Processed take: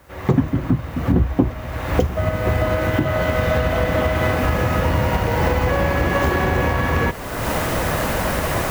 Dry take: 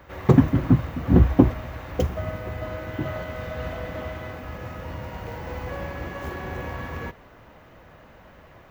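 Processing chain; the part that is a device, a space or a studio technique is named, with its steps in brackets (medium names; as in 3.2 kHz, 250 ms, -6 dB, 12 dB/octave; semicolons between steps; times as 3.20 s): cheap recorder with automatic gain (white noise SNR 35 dB; recorder AGC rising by 33 dB/s); trim -2 dB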